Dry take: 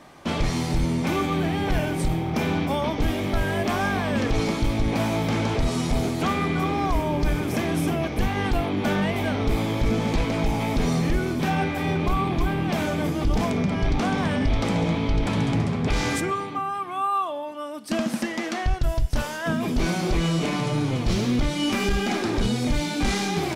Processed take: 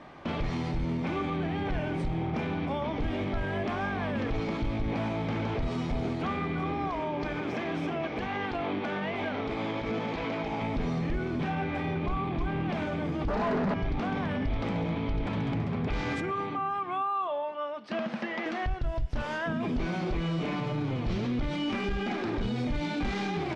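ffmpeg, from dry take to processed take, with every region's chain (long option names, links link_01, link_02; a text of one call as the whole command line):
ffmpeg -i in.wav -filter_complex "[0:a]asettb=1/sr,asplit=3[link_01][link_02][link_03];[link_01]atrim=end=6.894[link_04];[link_02]atrim=start=6.89:end=10.62,asetpts=PTS-STARTPTS,afade=type=in:duration=0.004:curve=qsin,afade=type=out:start_time=3.726:duration=0.004:curve=qsin,highpass=frequency=360:poles=1,equalizer=frequency=10000:width=2.3:gain=-11[link_05];[link_03]atrim=start=10.616[link_06];[link_04][link_05]acrossfade=duration=0.004:curve1=hsin:curve2=qsin[link_07];[link_07][link_06]acrossfade=duration=0.004:curve1=qsin:curve2=hsin,asettb=1/sr,asplit=3[link_08][link_09][link_10];[link_08]atrim=end=13.284[link_11];[link_09]atrim=start=13.28:end=13.74,asetpts=PTS-STARTPTS,afade=type=in:duration=0.004:curve=qsin,afade=type=out:start_time=0.456:duration=0.004:curve=qsin,asuperstop=centerf=2800:order=20:qfactor=1.6,aecho=1:1:4.8:0.65,atrim=end_sample=20286,asplit=2[link_12][link_13];[link_13]highpass=frequency=720:poles=1,volume=34dB,asoftclip=type=tanh:threshold=-10.5dB[link_14];[link_12][link_14]amix=inputs=2:normalize=0,lowpass=frequency=1800:poles=1,volume=-6dB[link_15];[link_10]atrim=start=13.736[link_16];[link_11][link_15]acrossfade=duration=0.004:curve1=hsin:curve2=qsin[link_17];[link_17][link_16]acrossfade=duration=0.004:curve1=qsin:curve2=hsin,asettb=1/sr,asplit=3[link_18][link_19][link_20];[link_18]atrim=end=17.274[link_21];[link_19]atrim=start=17.27:end=18.46,asetpts=PTS-STARTPTS,afade=type=in:duration=0.004:curve=qsin,afade=type=out:start_time=1.186:duration=0.004:curve=qsin,highpass=170,lowpass=4500,equalizer=frequency=270:width_type=o:width=0.37:gain=-10.5,bandreject=frequency=310:width=8.7[link_22];[link_20]atrim=start=18.456[link_23];[link_21][link_22]acrossfade=duration=0.004:curve1=hsin:curve2=qsin[link_24];[link_24][link_23]acrossfade=duration=0.004:curve1=qsin:curve2=hsin,lowpass=3100,alimiter=limit=-23.5dB:level=0:latency=1:release=108" out.wav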